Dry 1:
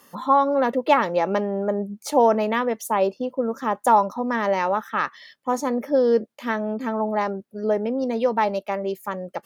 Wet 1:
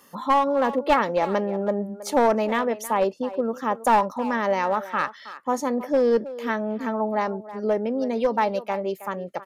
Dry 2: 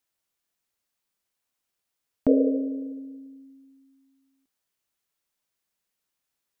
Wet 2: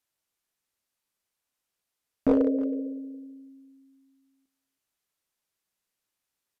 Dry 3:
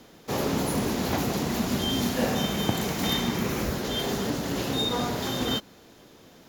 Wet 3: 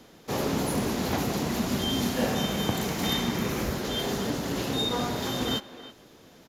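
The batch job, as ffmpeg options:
-filter_complex "[0:a]aresample=32000,aresample=44100,asplit=2[s0][s1];[s1]adelay=320,highpass=300,lowpass=3400,asoftclip=type=hard:threshold=0.188,volume=0.2[s2];[s0][s2]amix=inputs=2:normalize=0,aeval=exprs='clip(val(0),-1,0.168)':c=same,volume=0.891"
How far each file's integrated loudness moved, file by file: -1.5 LU, -1.5 LU, -1.0 LU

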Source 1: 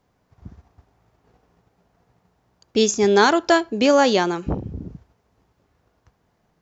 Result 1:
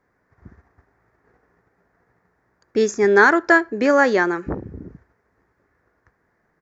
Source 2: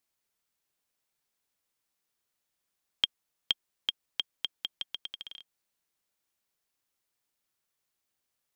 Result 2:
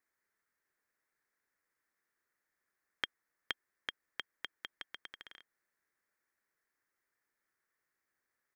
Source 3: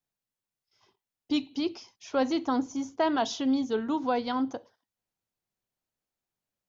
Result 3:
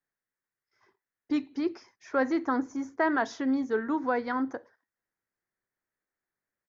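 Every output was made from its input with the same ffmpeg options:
-af "firequalizer=gain_entry='entry(160,0);entry(360,7);entry(730,2);entry(1800,15);entry(2900,-9);entry(5000,-3)':delay=0.05:min_phase=1,volume=0.562"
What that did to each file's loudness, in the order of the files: +1.0 LU, -10.5 LU, -0.5 LU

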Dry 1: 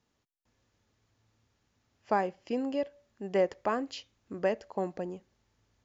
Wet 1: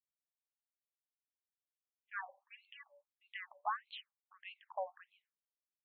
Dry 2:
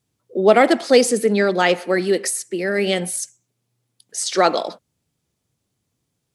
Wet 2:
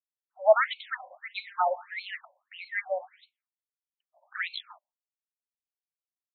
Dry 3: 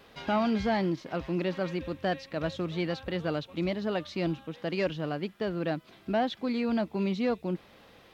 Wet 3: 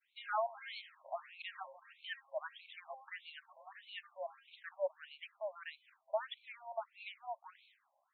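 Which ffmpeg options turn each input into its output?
-af "agate=range=0.0224:threshold=0.00501:ratio=3:detection=peak,afftfilt=real='re*between(b*sr/1024,730*pow(3100/730,0.5+0.5*sin(2*PI*1.6*pts/sr))/1.41,730*pow(3100/730,0.5+0.5*sin(2*PI*1.6*pts/sr))*1.41)':imag='im*between(b*sr/1024,730*pow(3100/730,0.5+0.5*sin(2*PI*1.6*pts/sr))/1.41,730*pow(3100/730,0.5+0.5*sin(2*PI*1.6*pts/sr))*1.41)':win_size=1024:overlap=0.75,volume=0.668"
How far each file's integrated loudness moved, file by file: -12.5 LU, -11.5 LU, -13.5 LU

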